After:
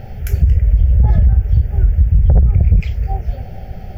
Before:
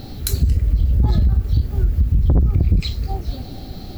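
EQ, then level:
moving average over 5 samples
phaser with its sweep stopped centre 1,100 Hz, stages 6
+5.5 dB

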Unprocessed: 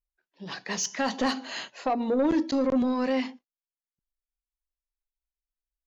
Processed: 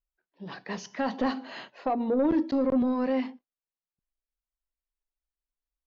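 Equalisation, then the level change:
low-pass filter 5,300 Hz 24 dB per octave
high-shelf EQ 2,100 Hz −11.5 dB
0.0 dB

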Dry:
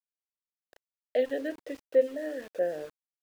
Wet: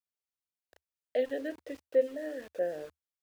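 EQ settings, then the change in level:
parametric band 77 Hz +8.5 dB 0.43 octaves
−3.0 dB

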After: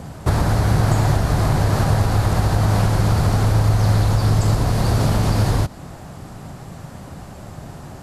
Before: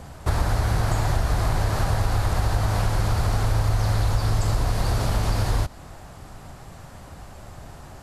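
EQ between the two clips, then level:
bass and treble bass −6 dB, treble +1 dB
parametric band 160 Hz +13 dB 2.2 octaves
+3.0 dB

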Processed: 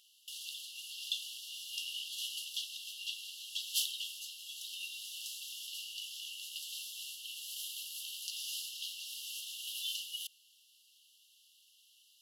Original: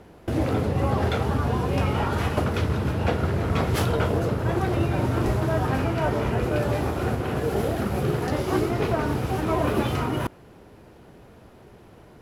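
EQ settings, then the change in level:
linear-phase brick-wall high-pass 2,700 Hz
+2.0 dB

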